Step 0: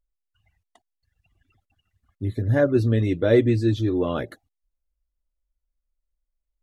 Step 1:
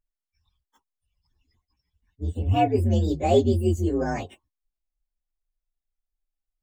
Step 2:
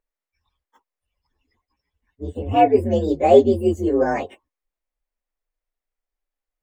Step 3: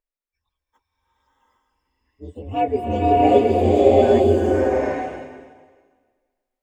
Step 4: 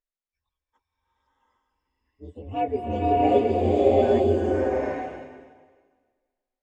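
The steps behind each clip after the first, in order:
frequency axis rescaled in octaves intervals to 126%
ten-band graphic EQ 125 Hz -5 dB, 250 Hz +5 dB, 500 Hz +12 dB, 1 kHz +7 dB, 2 kHz +9 dB; trim -3.5 dB
swelling reverb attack 770 ms, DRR -7.5 dB; trim -6.5 dB
distance through air 53 m; trim -5 dB

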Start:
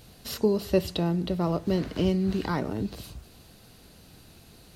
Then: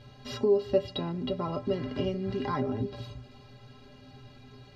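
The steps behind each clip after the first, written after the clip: distance through air 200 m; inharmonic resonator 120 Hz, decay 0.27 s, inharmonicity 0.03; in parallel at +3 dB: compression, threshold -44 dBFS, peak gain reduction 16.5 dB; on the sum: trim +5.5 dB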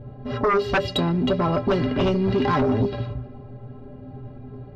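band-stop 960 Hz, Q 8.8; level-controlled noise filter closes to 600 Hz, open at -24 dBFS; sine folder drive 12 dB, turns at -12.5 dBFS; trim -3 dB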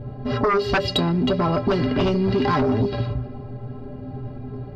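peaking EQ 4.7 kHz +8 dB 0.2 oct; band-stop 540 Hz, Q 16; compression 2.5:1, threshold -25 dBFS, peak gain reduction 5.5 dB; trim +5.5 dB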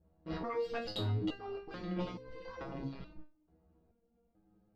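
gate -25 dBFS, range -19 dB; ring modulator 66 Hz; resonator arpeggio 2.3 Hz 80–520 Hz; trim -3.5 dB

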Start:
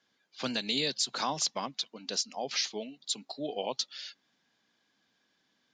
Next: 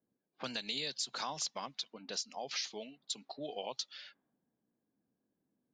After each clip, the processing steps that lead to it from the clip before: level-controlled noise filter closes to 400 Hz, open at -31 dBFS; dynamic bell 260 Hz, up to -6 dB, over -48 dBFS, Q 0.72; compression 2:1, threshold -38 dBFS, peak gain reduction 7 dB; trim -1 dB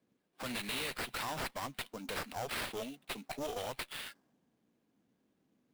peak limiter -32 dBFS, peak gain reduction 8 dB; one-sided clip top -48 dBFS, bottom -37 dBFS; sample-rate reducer 6.5 kHz, jitter 20%; trim +7.5 dB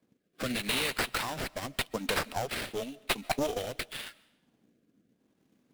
transient shaper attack +6 dB, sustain -5 dB; rotary cabinet horn 0.85 Hz; on a send at -22.5 dB: reverberation RT60 0.95 s, pre-delay 100 ms; on the sum: trim +7.5 dB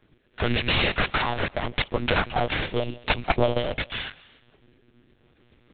in parallel at -2 dB: peak limiter -20 dBFS, peak gain reduction 7 dB; on the sum: monotone LPC vocoder at 8 kHz 120 Hz; tape noise reduction on one side only encoder only; trim +4.5 dB

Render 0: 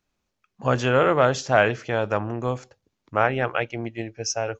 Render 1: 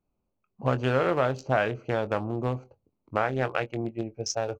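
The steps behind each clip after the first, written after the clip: local Wiener filter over 25 samples; compression 2.5:1, threshold -23 dBFS, peak gain reduction 7.5 dB; doubling 23 ms -12 dB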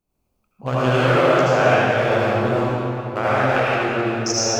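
treble shelf 2.9 kHz +8.5 dB; reverberation RT60 3.3 s, pre-delay 66 ms, DRR -10 dB; trim -1 dB

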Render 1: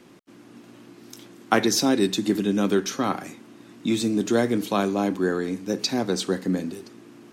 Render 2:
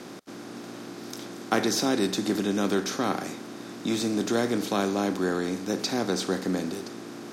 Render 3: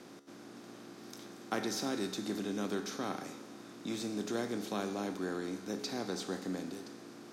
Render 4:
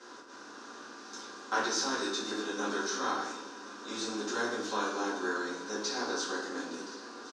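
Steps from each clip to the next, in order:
spectral levelling over time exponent 0.6; trim -6.5 dB
feedback comb 70 Hz, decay 1.8 s, harmonics all, mix 70%; trim -1.5 dB
cabinet simulation 460–7700 Hz, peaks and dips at 640 Hz -5 dB, 1 kHz +7 dB, 1.5 kHz +8 dB, 2.2 kHz -9 dB, 5.8 kHz +5 dB; delay 1071 ms -17.5 dB; simulated room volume 84 m³, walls mixed, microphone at 2.1 m; trim -3 dB

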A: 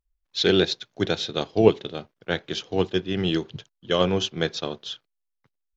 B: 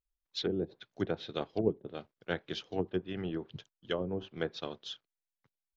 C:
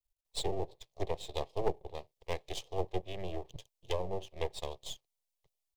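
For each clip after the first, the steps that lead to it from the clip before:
low-pass that closes with the level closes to 400 Hz, closed at -16.5 dBFS; harmonic-percussive split harmonic -6 dB; trim -7.5 dB
half-wave rectifier; static phaser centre 600 Hz, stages 4; hard clipper -25.5 dBFS, distortion -24 dB; trim +5.5 dB

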